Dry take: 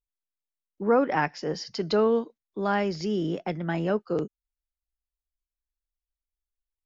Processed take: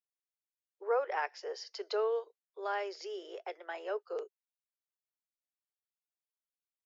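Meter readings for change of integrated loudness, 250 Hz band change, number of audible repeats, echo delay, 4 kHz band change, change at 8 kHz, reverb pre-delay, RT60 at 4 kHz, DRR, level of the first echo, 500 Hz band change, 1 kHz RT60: −10.0 dB, −26.5 dB, no echo audible, no echo audible, −8.5 dB, can't be measured, no reverb audible, no reverb audible, no reverb audible, no echo audible, −9.0 dB, no reverb audible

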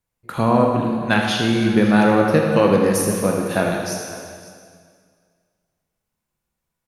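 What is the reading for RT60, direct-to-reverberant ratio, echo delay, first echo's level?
2.1 s, −0.5 dB, 80 ms, −9.0 dB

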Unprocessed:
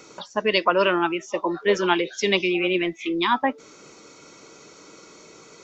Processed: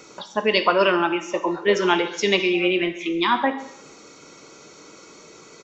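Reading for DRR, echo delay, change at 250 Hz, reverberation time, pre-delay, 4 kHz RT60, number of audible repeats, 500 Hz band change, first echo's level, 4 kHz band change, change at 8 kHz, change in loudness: 8.0 dB, 134 ms, +1.5 dB, 0.70 s, 9 ms, 0.75 s, 1, +1.5 dB, −18.5 dB, +1.5 dB, can't be measured, +1.5 dB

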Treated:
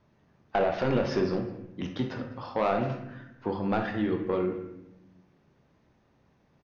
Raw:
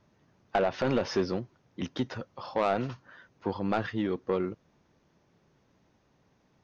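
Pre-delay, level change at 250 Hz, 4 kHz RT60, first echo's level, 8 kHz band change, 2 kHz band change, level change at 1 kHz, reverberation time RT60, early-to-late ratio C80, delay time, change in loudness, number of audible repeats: 23 ms, +2.0 dB, 0.60 s, −20.5 dB, can't be measured, +1.0 dB, +1.0 dB, 0.85 s, 9.5 dB, 204 ms, +1.5 dB, 1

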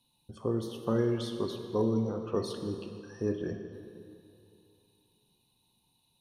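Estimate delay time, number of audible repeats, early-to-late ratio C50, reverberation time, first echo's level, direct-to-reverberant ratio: no echo audible, no echo audible, 6.0 dB, 2.6 s, no echo audible, 6.0 dB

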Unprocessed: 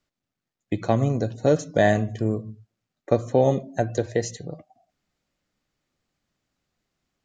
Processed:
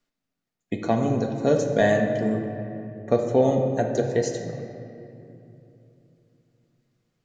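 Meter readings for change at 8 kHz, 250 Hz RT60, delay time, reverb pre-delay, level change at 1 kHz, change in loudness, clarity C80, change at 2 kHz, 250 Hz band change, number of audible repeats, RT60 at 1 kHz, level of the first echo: −0.5 dB, 3.9 s, no echo audible, 4 ms, −0.5 dB, 0.0 dB, 6.5 dB, 0.0 dB, +1.5 dB, no echo audible, 2.5 s, no echo audible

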